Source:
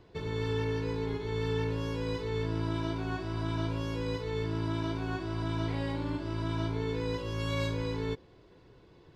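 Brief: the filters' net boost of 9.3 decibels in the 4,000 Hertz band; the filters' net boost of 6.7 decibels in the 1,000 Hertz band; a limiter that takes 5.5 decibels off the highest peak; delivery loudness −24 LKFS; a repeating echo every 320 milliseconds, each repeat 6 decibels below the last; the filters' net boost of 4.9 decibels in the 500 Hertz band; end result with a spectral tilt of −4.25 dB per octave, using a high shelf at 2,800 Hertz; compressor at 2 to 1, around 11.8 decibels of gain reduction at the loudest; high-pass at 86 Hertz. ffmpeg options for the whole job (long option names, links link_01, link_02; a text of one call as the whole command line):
ffmpeg -i in.wav -af "highpass=86,equalizer=frequency=500:width_type=o:gain=4.5,equalizer=frequency=1000:width_type=o:gain=5.5,highshelf=frequency=2800:gain=5,equalizer=frequency=4000:width_type=o:gain=7,acompressor=threshold=-48dB:ratio=2,alimiter=level_in=10.5dB:limit=-24dB:level=0:latency=1,volume=-10.5dB,aecho=1:1:320|640|960|1280|1600|1920:0.501|0.251|0.125|0.0626|0.0313|0.0157,volume=18dB" out.wav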